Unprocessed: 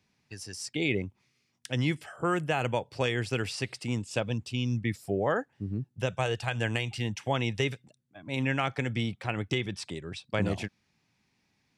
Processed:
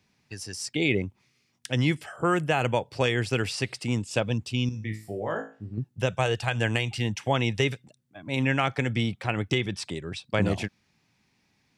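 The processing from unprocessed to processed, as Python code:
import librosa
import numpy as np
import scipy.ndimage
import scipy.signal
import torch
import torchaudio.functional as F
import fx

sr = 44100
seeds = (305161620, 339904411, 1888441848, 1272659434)

y = fx.comb_fb(x, sr, f0_hz=54.0, decay_s=0.36, harmonics='all', damping=0.0, mix_pct=90, at=(4.69, 5.78))
y = y * librosa.db_to_amplitude(4.0)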